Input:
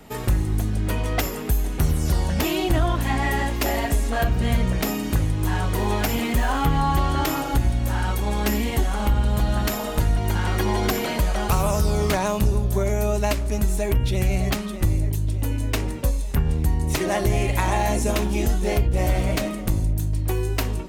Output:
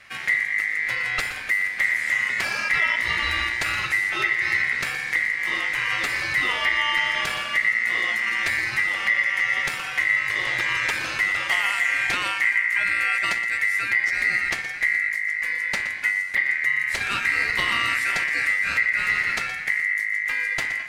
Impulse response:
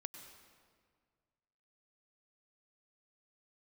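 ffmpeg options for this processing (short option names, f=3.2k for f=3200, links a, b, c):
-filter_complex "[0:a]lowpass=7.9k,aeval=exprs='val(0)*sin(2*PI*2000*n/s)':c=same,asplit=2[a][b];[1:a]atrim=start_sample=2205,adelay=120[c];[b][c]afir=irnorm=-1:irlink=0,volume=-8dB[d];[a][d]amix=inputs=2:normalize=0"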